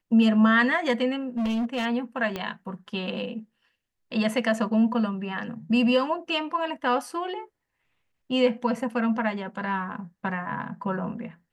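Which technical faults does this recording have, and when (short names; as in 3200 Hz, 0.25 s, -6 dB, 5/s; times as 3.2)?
1.37–1.86 clipped -23.5 dBFS
2.36 pop -16 dBFS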